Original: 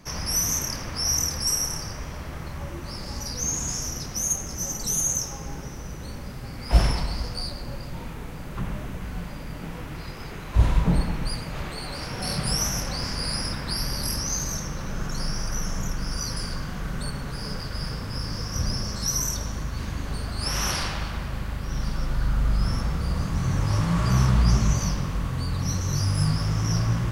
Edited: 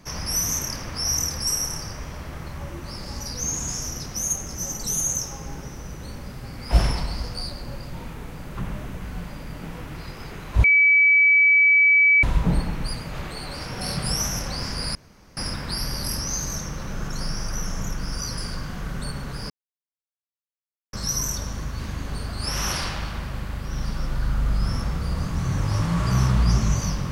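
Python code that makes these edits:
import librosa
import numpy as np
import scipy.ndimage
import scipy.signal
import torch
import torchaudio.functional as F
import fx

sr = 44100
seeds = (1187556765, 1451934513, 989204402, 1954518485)

y = fx.edit(x, sr, fx.insert_tone(at_s=10.64, length_s=1.59, hz=2290.0, db=-12.5),
    fx.insert_room_tone(at_s=13.36, length_s=0.42),
    fx.silence(start_s=17.49, length_s=1.43), tone=tone)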